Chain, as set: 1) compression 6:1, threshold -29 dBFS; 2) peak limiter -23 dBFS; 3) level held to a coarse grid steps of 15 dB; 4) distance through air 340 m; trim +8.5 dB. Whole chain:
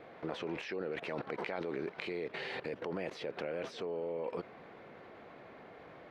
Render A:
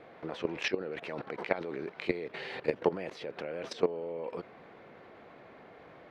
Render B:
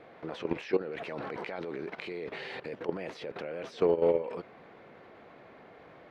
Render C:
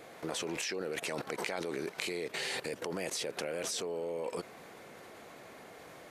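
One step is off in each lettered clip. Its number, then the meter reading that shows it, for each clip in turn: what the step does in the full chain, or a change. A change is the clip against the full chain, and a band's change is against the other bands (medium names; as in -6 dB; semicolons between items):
2, crest factor change +6.0 dB; 1, mean gain reduction 4.5 dB; 4, 4 kHz band +8.0 dB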